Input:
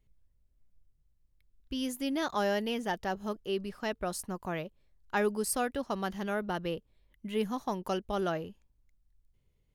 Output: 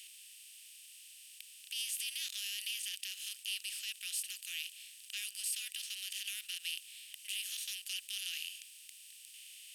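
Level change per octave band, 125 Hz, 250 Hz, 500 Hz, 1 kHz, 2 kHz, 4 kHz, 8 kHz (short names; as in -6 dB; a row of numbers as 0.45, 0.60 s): under -40 dB, under -40 dB, under -40 dB, under -35 dB, -5.0 dB, +5.5 dB, +3.5 dB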